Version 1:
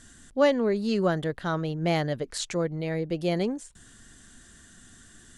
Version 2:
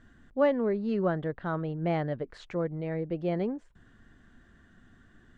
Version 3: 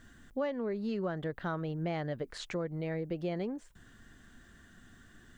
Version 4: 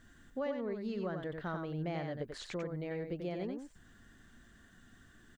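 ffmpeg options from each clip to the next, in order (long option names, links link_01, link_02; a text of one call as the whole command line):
ffmpeg -i in.wav -af "lowpass=1800,volume=-3dB" out.wav
ffmpeg -i in.wav -af "acompressor=threshold=-32dB:ratio=5,crystalizer=i=3.5:c=0" out.wav
ffmpeg -i in.wav -af "aecho=1:1:91:0.531,volume=-4dB" out.wav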